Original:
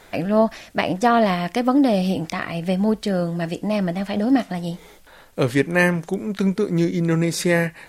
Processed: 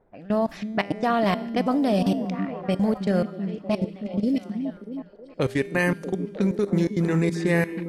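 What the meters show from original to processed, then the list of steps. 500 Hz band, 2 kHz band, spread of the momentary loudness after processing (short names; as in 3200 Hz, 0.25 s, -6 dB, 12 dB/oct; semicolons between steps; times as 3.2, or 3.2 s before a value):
-4.0 dB, -5.5 dB, 9 LU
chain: spectral gain 3.76–4.46, 610–2000 Hz -26 dB; low-pass opened by the level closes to 580 Hz, open at -16.5 dBFS; level quantiser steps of 21 dB; resonator 200 Hz, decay 1.3 s, mix 60%; on a send: delay with a stepping band-pass 0.318 s, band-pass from 220 Hz, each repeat 0.7 oct, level -5.5 dB; on the sum: gain +7.5 dB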